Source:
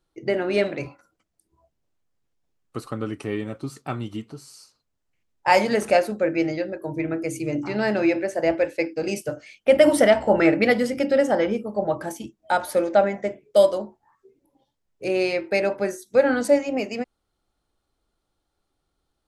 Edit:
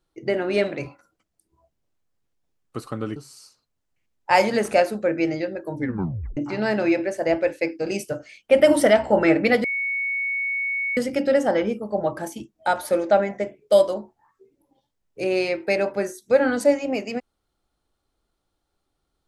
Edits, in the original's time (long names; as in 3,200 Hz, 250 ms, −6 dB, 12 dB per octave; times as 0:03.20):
0:03.16–0:04.33: remove
0:06.93: tape stop 0.61 s
0:10.81: insert tone 2,220 Hz −22.5 dBFS 1.33 s